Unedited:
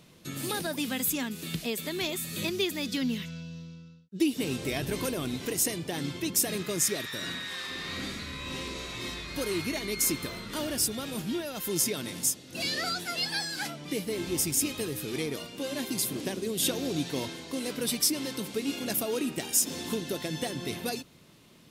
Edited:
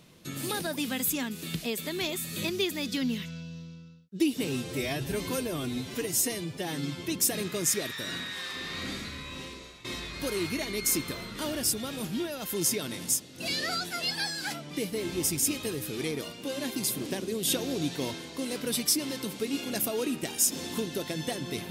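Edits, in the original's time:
4.47–6.18 s: stretch 1.5×
8.18–8.99 s: fade out, to -15.5 dB

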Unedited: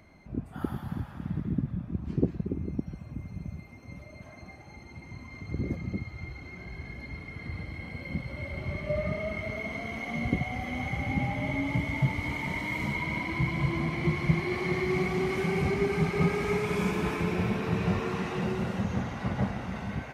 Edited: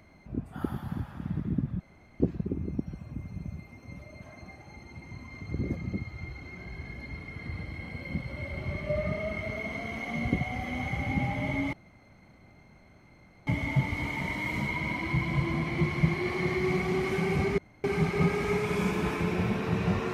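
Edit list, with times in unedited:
1.80–2.20 s: room tone
11.73 s: insert room tone 1.74 s
15.84 s: insert room tone 0.26 s

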